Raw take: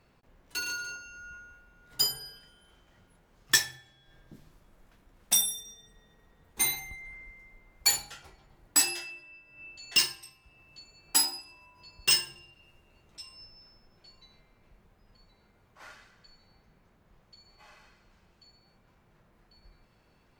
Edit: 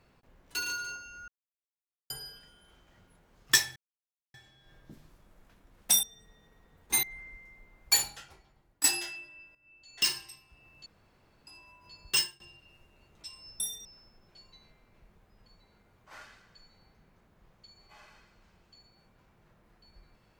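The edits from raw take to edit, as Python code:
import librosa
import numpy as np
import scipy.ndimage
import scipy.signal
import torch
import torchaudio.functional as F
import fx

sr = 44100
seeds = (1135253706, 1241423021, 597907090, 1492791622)

y = fx.edit(x, sr, fx.silence(start_s=1.28, length_s=0.82),
    fx.insert_silence(at_s=3.76, length_s=0.58),
    fx.move(start_s=5.45, length_s=0.25, to_s=13.54),
    fx.cut(start_s=6.7, length_s=0.27),
    fx.fade_out_to(start_s=7.97, length_s=0.81, floor_db=-14.5),
    fx.fade_in_from(start_s=9.49, length_s=0.65, curve='qua', floor_db=-14.5),
    fx.room_tone_fill(start_s=10.8, length_s=0.61),
    fx.fade_out_to(start_s=11.99, length_s=0.35, floor_db=-21.0), tone=tone)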